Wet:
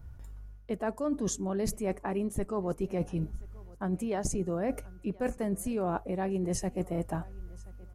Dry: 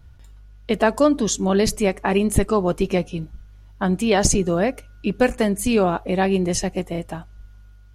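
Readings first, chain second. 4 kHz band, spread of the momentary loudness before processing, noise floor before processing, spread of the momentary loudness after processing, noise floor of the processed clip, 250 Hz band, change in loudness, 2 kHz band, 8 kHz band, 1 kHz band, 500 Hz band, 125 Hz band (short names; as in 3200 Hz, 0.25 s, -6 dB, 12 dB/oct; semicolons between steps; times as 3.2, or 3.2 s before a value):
-19.5 dB, 11 LU, -46 dBFS, 14 LU, -51 dBFS, -11.5 dB, -12.5 dB, -17.5 dB, -13.5 dB, -13.0 dB, -12.5 dB, -9.5 dB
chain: bell 3500 Hz -12.5 dB 1.6 oct; reverse; compressor 10:1, threshold -28 dBFS, peak gain reduction 18 dB; reverse; feedback echo 1.028 s, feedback 24%, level -23.5 dB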